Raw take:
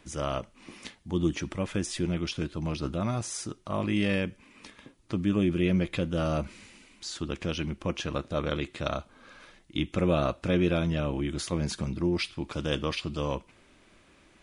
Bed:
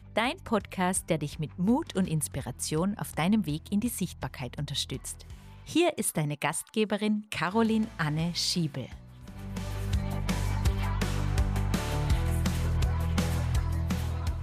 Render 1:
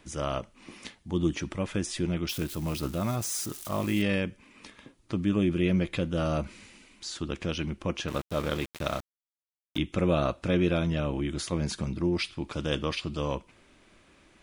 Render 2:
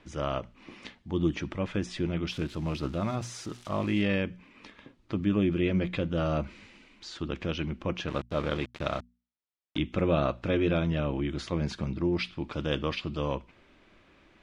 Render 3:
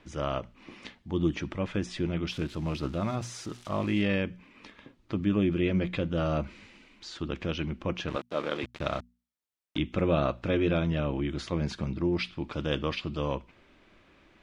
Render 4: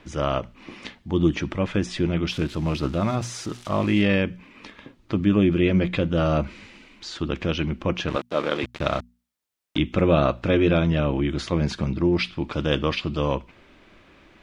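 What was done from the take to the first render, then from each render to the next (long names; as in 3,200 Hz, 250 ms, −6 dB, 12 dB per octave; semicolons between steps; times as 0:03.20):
0:02.29–0:04.02: spike at every zero crossing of −31.5 dBFS; 0:08.08–0:09.78: centre clipping without the shift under −36.5 dBFS
low-pass filter 3,900 Hz 12 dB per octave; mains-hum notches 60/120/180/240 Hz
0:08.16–0:08.63: high-pass filter 270 Hz
level +7 dB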